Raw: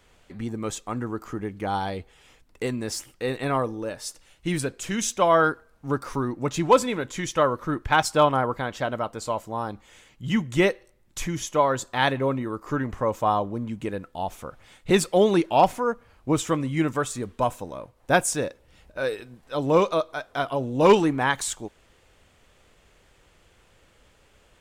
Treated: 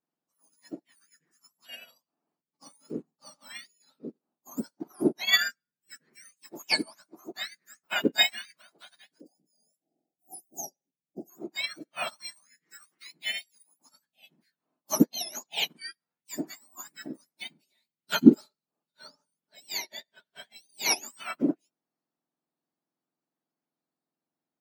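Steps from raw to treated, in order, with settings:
frequency axis turned over on the octave scale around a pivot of 1,500 Hz
time-frequency box erased 0:09.21–0:11.30, 850–4,700 Hz
expander for the loud parts 2.5 to 1, over −39 dBFS
level +6.5 dB

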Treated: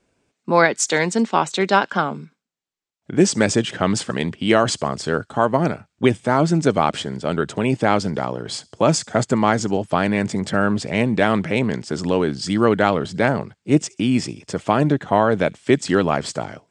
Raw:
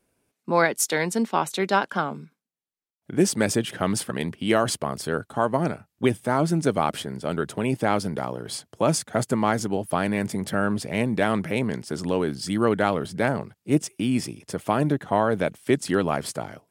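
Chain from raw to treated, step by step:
Chebyshev low-pass filter 7,800 Hz, order 4
on a send: delay with a high-pass on its return 69 ms, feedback 42%, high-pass 3,800 Hz, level −23.5 dB
on the sum: level +6 dB

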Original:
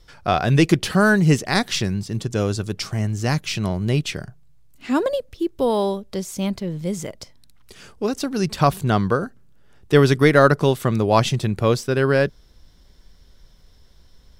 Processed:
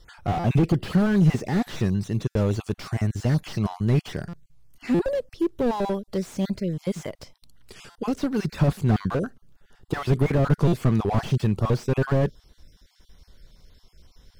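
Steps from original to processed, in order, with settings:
time-frequency cells dropped at random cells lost 24%
buffer that repeats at 0:00.39/0:02.30/0:04.28/0:04.94/0:07.90/0:10.67, samples 256, times 8
slew-rate limiting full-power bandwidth 44 Hz

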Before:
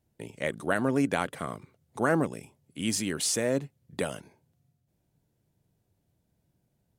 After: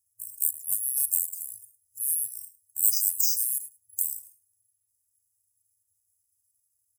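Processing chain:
spectral magnitudes quantised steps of 15 dB
high-pass filter 68 Hz
high shelf with overshoot 1,800 Hz +12.5 dB, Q 3
bad sample-rate conversion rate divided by 4×, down filtered, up zero stuff
parametric band 13,000 Hz +11.5 dB 1.8 octaves
on a send: single-tap delay 105 ms −18.5 dB
on the sum: brick-wall band-stop 110–4,800 Hz
level −16.5 dB

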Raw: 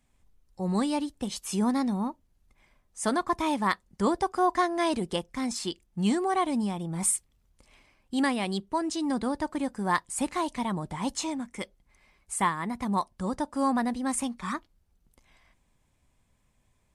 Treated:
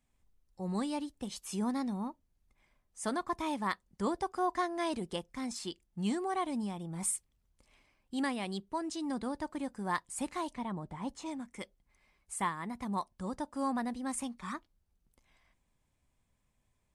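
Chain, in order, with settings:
0:10.53–0:11.25: high-shelf EQ 4,000 Hz → 2,100 Hz −11 dB
level −7.5 dB

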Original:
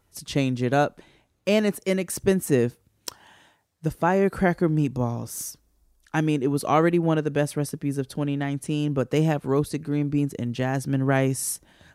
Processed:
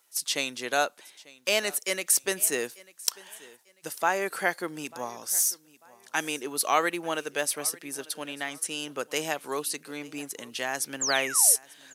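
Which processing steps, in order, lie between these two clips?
meter weighting curve A
sound drawn into the spectrogram fall, 0:11.01–0:11.56, 410–7,700 Hz −36 dBFS
RIAA equalisation recording
log-companded quantiser 8 bits
on a send: repeating echo 894 ms, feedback 31%, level −22 dB
on the sum: level −1.5 dB

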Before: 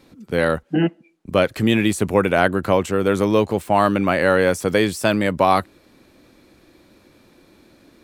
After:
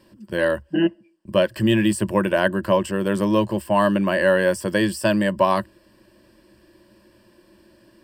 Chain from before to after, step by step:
EQ curve with evenly spaced ripples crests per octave 1.3, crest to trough 13 dB
level −4.5 dB

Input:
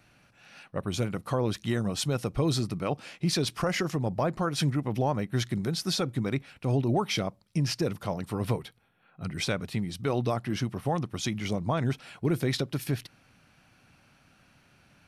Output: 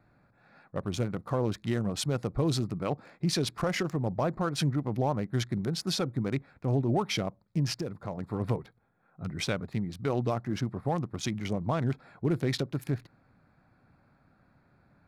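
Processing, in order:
adaptive Wiener filter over 15 samples
0:07.73–0:08.18: downward compressor 2 to 1, threshold −34 dBFS, peak gain reduction 6.5 dB
level −1 dB

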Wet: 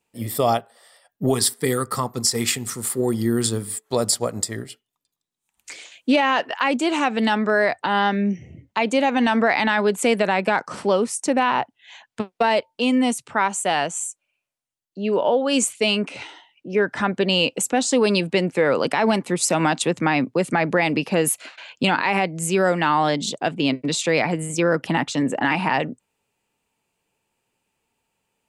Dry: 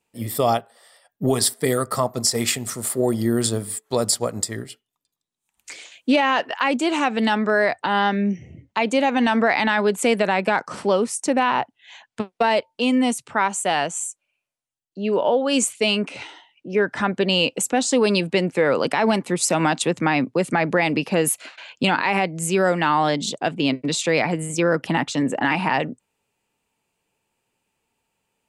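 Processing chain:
0:01.34–0:03.73: parametric band 630 Hz −13 dB 0.3 octaves

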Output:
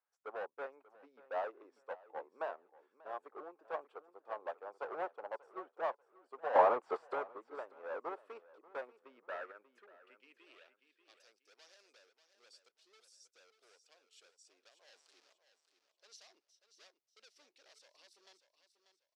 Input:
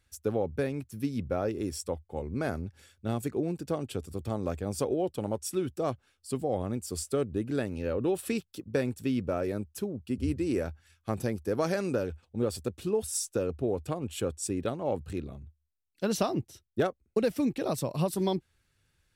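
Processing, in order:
0:14.88–0:15.33: converter with a step at zero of −32.5 dBFS
low-pass filter 12,000 Hz
de-essing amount 75%
high-pass filter 450 Hz 24 dB per octave
spectral tilt −3.5 dB per octave
hard clipping −32.5 dBFS, distortion −6 dB
0:06.55–0:07.14: mid-hump overdrive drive 34 dB, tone 1,100 Hz, clips at −22.5 dBFS
band-pass filter sweep 1,000 Hz → 5,200 Hz, 0:08.98–0:11.30
repeating echo 589 ms, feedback 30%, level −10 dB
expander for the loud parts 2.5 to 1, over −51 dBFS
level +15 dB

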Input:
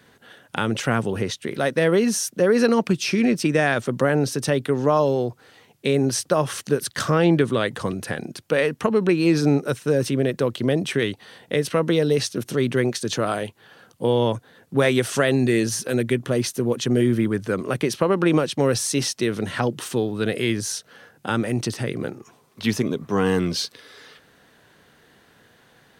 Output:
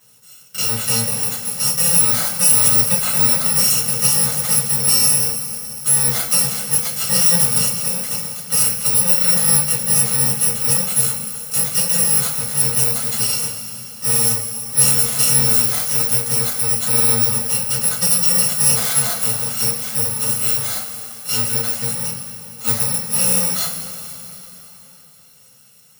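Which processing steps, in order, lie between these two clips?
samples in bit-reversed order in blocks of 128 samples
high-pass filter 140 Hz 12 dB per octave
parametric band 2,600 Hz −4 dB 0.35 octaves
coupled-rooms reverb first 0.26 s, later 3.7 s, from −18 dB, DRR −10 dB
level −5.5 dB

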